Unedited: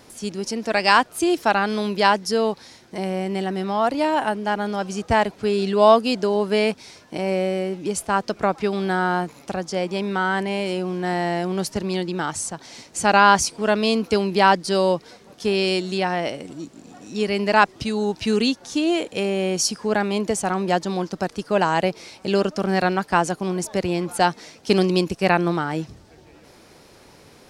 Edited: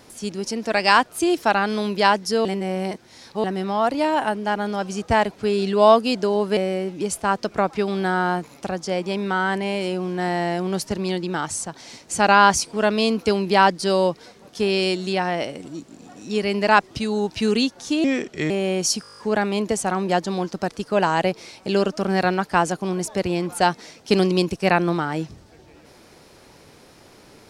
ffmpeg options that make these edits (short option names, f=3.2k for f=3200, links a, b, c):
-filter_complex "[0:a]asplit=14[a][b][c][d][e][f][g][h][i][j][k][l][m][n];[a]atrim=end=2.452[o];[b]atrim=start=2.448:end=3.442,asetpts=PTS-STARTPTS,areverse[p];[c]atrim=start=3.438:end=6.572[q];[d]atrim=start=7.418:end=18.894[r];[e]atrim=start=18.89:end=19.25,asetpts=PTS-STARTPTS,asetrate=34398,aresample=44100[s];[f]atrim=start=19.246:end=19.792[t];[g]atrim=start=19.768:end=19.792[u];[h]atrim=start=19.768:end=19.792[v];[i]atrim=start=19.768:end=19.792[w];[j]atrim=start=19.768:end=19.792[x];[k]atrim=start=19.768:end=19.792[y];[l]atrim=start=19.768:end=19.792[z];[m]atrim=start=19.768:end=19.792[aa];[n]atrim=start=19.768[ab];[o][p]acrossfade=d=0.004:c1=hsin:c2=hsin[ac];[ac][q]acrossfade=d=0.004:c1=hsin:c2=hsin[ad];[ad][r]acrossfade=d=0.004:c1=hsin:c2=hsin[ae];[ae][s]acrossfade=d=0.004:c1=hsin:c2=hsin[af];[af][t]acrossfade=d=0.004:c1=hsin:c2=hsin[ag];[ag][u]acrossfade=d=0.004:c1=hsin:c2=hsin[ah];[ah][v]acrossfade=d=0.004:c1=hsin:c2=hsin[ai];[ai][w]acrossfade=d=0.004:c1=hsin:c2=hsin[aj];[aj][x]acrossfade=d=0.004:c1=hsin:c2=hsin[ak];[ak][y]acrossfade=d=0.004:c1=hsin:c2=hsin[al];[al][z]acrossfade=d=0.004:c1=hsin:c2=hsin[am];[am][aa]acrossfade=d=0.004:c1=hsin:c2=hsin[an];[an][ab]acrossfade=d=0.004:c1=hsin:c2=hsin"